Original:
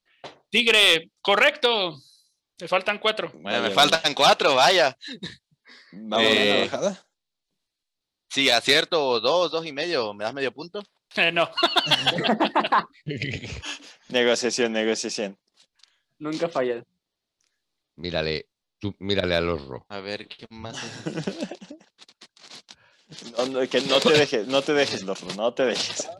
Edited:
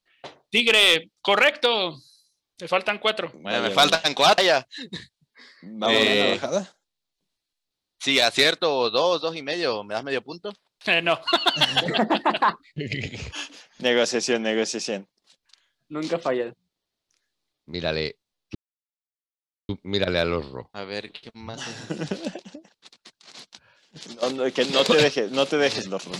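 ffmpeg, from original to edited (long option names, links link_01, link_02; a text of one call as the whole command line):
ffmpeg -i in.wav -filter_complex "[0:a]asplit=3[link_01][link_02][link_03];[link_01]atrim=end=4.382[link_04];[link_02]atrim=start=4.678:end=18.85,asetpts=PTS-STARTPTS,afade=type=out:start_time=14.168:duration=0.004:curve=hsin,apad=pad_dur=1.14[link_05];[link_03]atrim=start=18.85,asetpts=PTS-STARTPTS,afade=type=in:duration=0.004:curve=hsin[link_06];[link_05][link_06]concat=n=2:v=0:a=1[link_07];[link_04][link_07]acrossfade=duration=0.004:curve1=hsin:curve2=hsin" out.wav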